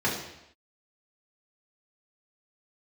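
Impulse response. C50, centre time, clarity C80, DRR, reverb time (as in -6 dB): 4.5 dB, 41 ms, 7.5 dB, -6.5 dB, not exponential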